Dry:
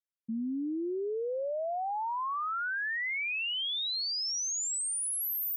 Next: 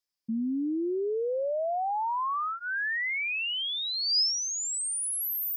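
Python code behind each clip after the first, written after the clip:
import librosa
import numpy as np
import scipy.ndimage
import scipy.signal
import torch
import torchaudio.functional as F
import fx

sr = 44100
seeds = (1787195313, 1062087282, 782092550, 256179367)

y = fx.peak_eq(x, sr, hz=5000.0, db=14.0, octaves=0.33)
y = fx.notch(y, sr, hz=1400.0, q=7.1)
y = fx.rider(y, sr, range_db=4, speed_s=0.5)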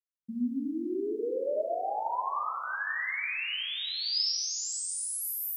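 y = fx.quant_dither(x, sr, seeds[0], bits=12, dither='none')
y = fx.echo_feedback(y, sr, ms=374, feedback_pct=41, wet_db=-23.0)
y = fx.rev_plate(y, sr, seeds[1], rt60_s=2.0, hf_ratio=0.8, predelay_ms=0, drr_db=-1.5)
y = y * 10.0 ** (-6.5 / 20.0)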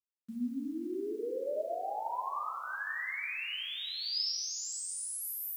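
y = fx.quant_dither(x, sr, seeds[2], bits=10, dither='none')
y = y * 10.0 ** (-4.5 / 20.0)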